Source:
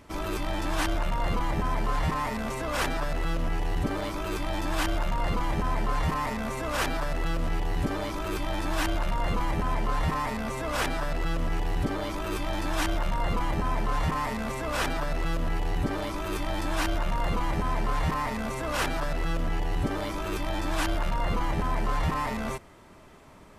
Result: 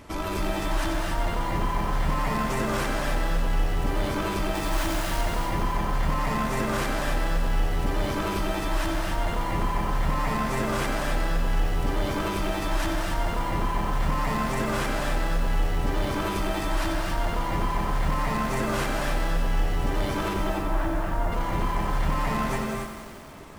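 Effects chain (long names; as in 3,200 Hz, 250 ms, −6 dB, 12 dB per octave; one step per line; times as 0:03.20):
0:20.33–0:21.32: low-pass filter 1,500 Hz 12 dB per octave
brickwall limiter −27 dBFS, peak gain reduction 10.5 dB
0:04.55–0:05.21: log-companded quantiser 4 bits
reverb whose tail is shaped and stops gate 310 ms rising, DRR 1.5 dB
feedback echo at a low word length 92 ms, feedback 80%, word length 8 bits, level −9 dB
level +5 dB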